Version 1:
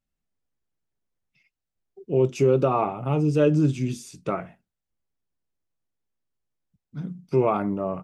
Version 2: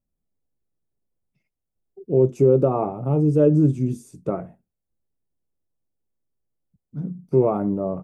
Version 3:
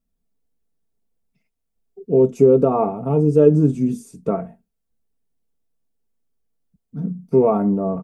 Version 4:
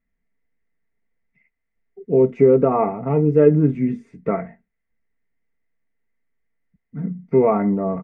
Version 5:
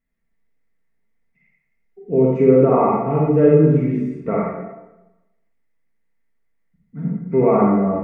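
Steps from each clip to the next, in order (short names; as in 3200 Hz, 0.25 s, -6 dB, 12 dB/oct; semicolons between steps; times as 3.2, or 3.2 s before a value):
EQ curve 520 Hz 0 dB, 2800 Hz -20 dB, 5000 Hz -17 dB, 9200 Hz -6 dB; gain +3.5 dB
comb 4.4 ms, depth 62%; gain +2.5 dB
synth low-pass 2000 Hz, resonance Q 12; gain -1 dB
reverb RT60 1.0 s, pre-delay 35 ms, DRR -4 dB; gain -2.5 dB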